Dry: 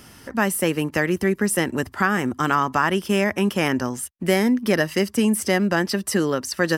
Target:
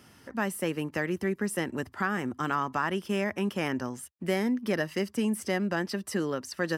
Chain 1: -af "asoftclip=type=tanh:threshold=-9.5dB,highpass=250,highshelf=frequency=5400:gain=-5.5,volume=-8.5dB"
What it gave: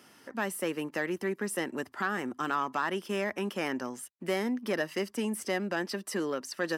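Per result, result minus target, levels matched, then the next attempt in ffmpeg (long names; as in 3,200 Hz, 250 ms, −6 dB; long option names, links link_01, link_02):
soft clipping: distortion +15 dB; 125 Hz band −5.5 dB
-af "asoftclip=type=tanh:threshold=-0.5dB,highpass=250,highshelf=frequency=5400:gain=-5.5,volume=-8.5dB"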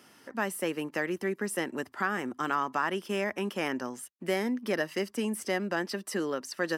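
125 Hz band −5.5 dB
-af "asoftclip=type=tanh:threshold=-0.5dB,highpass=71,highshelf=frequency=5400:gain=-5.5,volume=-8.5dB"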